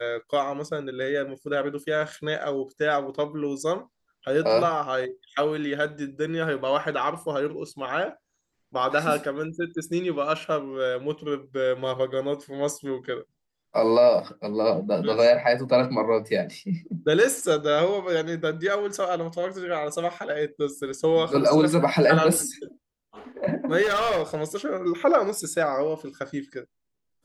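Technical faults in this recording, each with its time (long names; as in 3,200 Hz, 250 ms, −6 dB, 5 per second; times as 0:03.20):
0:23.82–0:24.41: clipping −20.5 dBFS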